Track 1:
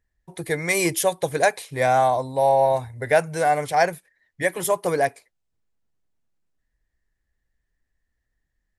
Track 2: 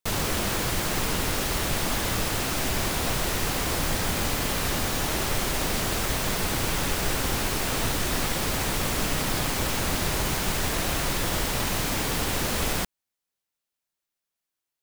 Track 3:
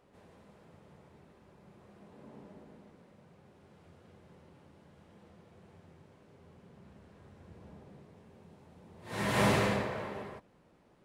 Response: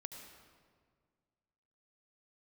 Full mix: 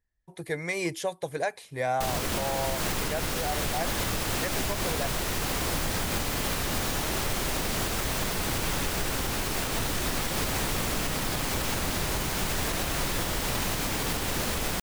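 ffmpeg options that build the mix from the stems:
-filter_complex "[0:a]acrossover=split=6900[a][b];[b]acompressor=threshold=-42dB:ratio=4:attack=1:release=60[c];[a][c]amix=inputs=2:normalize=0,volume=-6.5dB[d];[1:a]adelay=1950,volume=3dB[e];[2:a]adelay=1400,volume=-13.5dB[f];[d][e][f]amix=inputs=3:normalize=0,alimiter=limit=-18.5dB:level=0:latency=1:release=264"

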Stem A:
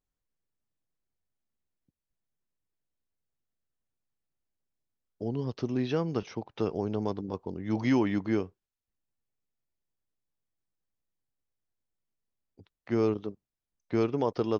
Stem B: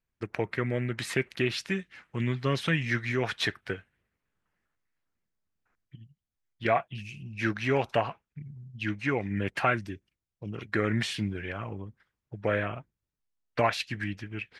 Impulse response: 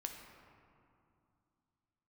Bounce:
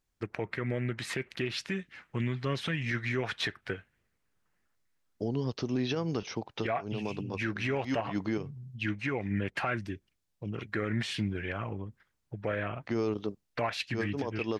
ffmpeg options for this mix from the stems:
-filter_complex "[0:a]highshelf=f=2.9k:g=9,volume=2.5dB[a];[1:a]acontrast=66,volume=-6dB,asplit=2[b][c];[c]apad=whole_len=643606[d];[a][d]sidechaincompress=threshold=-44dB:ratio=10:attack=20:release=109[e];[e][b]amix=inputs=2:normalize=0,highshelf=f=9.5k:g=-8.5,alimiter=limit=-21.5dB:level=0:latency=1:release=127"

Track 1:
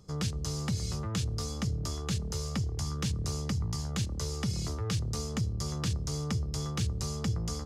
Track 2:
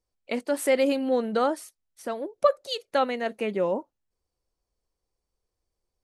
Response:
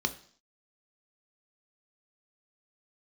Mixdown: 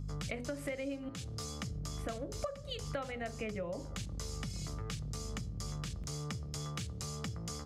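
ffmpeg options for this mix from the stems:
-filter_complex "[0:a]lowshelf=f=190:g=-9.5,volume=-1.5dB,asplit=2[a][b];[b]volume=-18dB[c];[1:a]equalizer=f=10k:w=0.4:g=-9,aeval=exprs='val(0)+0.00891*(sin(2*PI*50*n/s)+sin(2*PI*2*50*n/s)/2+sin(2*PI*3*50*n/s)/3+sin(2*PI*4*50*n/s)/4+sin(2*PI*5*50*n/s)/5)':c=same,volume=2dB,asplit=3[d][e][f];[d]atrim=end=1.09,asetpts=PTS-STARTPTS,afade=t=out:st=1.086:d=0.004:c=hsin[g];[e]atrim=start=1.09:end=1.71,asetpts=PTS-STARTPTS,volume=0[h];[f]atrim=start=1.71,asetpts=PTS-STARTPTS,afade=t=in:d=0.004:c=hsin[i];[g][h][i]concat=n=3:v=0:a=1,asplit=2[j][k];[k]volume=-11dB[l];[2:a]atrim=start_sample=2205[m];[c][l]amix=inputs=2:normalize=0[n];[n][m]afir=irnorm=-1:irlink=0[o];[a][j][o]amix=inputs=3:normalize=0,acompressor=threshold=-36dB:ratio=12"

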